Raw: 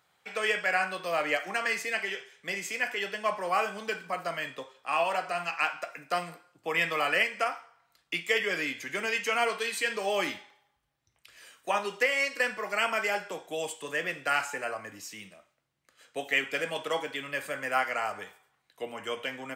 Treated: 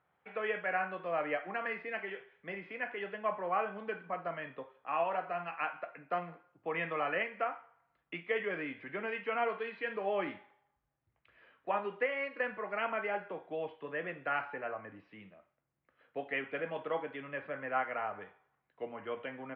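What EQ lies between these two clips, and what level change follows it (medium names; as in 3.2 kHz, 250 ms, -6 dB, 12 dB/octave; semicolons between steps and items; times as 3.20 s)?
Gaussian low-pass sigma 2.9 samples; distance through air 370 m; -2.5 dB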